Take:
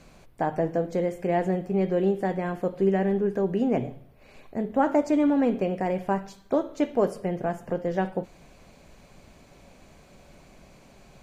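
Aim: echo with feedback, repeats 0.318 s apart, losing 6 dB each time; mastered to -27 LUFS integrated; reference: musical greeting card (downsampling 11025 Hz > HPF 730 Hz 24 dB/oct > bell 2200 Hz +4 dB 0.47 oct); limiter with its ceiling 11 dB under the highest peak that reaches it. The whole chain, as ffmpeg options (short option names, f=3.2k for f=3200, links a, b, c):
-af "alimiter=limit=-21.5dB:level=0:latency=1,aecho=1:1:318|636|954|1272|1590|1908:0.501|0.251|0.125|0.0626|0.0313|0.0157,aresample=11025,aresample=44100,highpass=f=730:w=0.5412,highpass=f=730:w=1.3066,equalizer=f=2.2k:t=o:w=0.47:g=4,volume=13dB"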